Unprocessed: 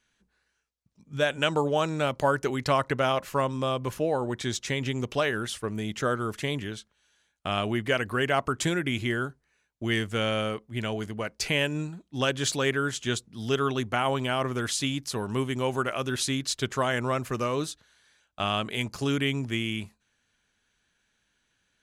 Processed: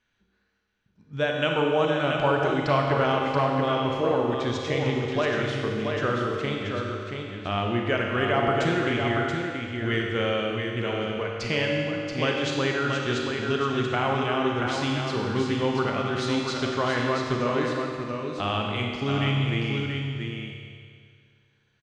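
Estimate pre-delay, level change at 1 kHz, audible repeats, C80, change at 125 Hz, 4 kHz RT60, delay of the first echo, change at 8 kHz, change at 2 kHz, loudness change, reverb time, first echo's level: 30 ms, +3.0 dB, 1, 0.0 dB, +3.5 dB, 2.0 s, 680 ms, −9.0 dB, +2.5 dB, +2.5 dB, 2.1 s, −5.5 dB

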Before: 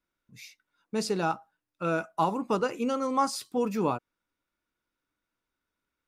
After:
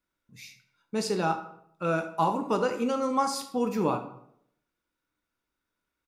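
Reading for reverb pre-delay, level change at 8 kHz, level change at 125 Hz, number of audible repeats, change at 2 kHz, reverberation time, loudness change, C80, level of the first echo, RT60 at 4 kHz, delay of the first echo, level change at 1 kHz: 12 ms, +0.5 dB, +1.5 dB, 1, +0.5 dB, 0.70 s, +1.0 dB, 14.0 dB, −15.5 dB, 0.45 s, 75 ms, +1.0 dB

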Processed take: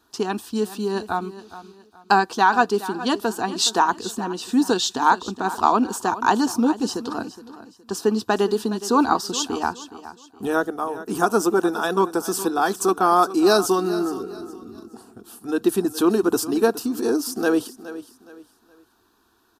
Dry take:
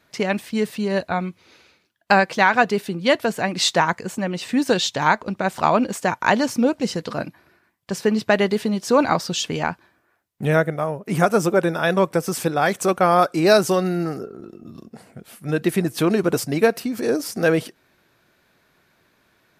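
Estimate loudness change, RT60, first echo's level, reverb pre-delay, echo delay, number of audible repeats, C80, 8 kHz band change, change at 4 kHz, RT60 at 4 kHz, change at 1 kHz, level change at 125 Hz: −1.0 dB, no reverb audible, −15.0 dB, no reverb audible, 418 ms, 3, no reverb audible, +1.5 dB, −1.0 dB, no reverb audible, +1.0 dB, −10.0 dB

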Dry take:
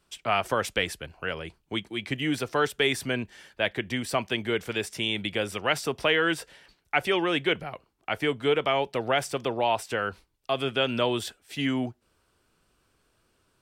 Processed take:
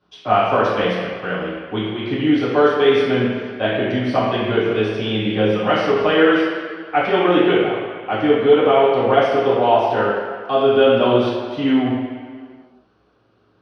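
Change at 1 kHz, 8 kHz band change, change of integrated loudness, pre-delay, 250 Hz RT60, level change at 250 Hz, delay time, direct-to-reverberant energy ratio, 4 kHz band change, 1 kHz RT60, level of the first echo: +11.0 dB, below −10 dB, +10.0 dB, 3 ms, 1.8 s, +12.5 dB, no echo audible, −9.5 dB, +3.5 dB, 2.0 s, no echo audible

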